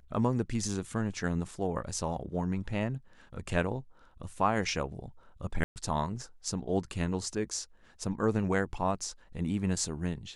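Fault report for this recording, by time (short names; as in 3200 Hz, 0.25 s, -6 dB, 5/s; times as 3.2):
5.64–5.76 gap 0.119 s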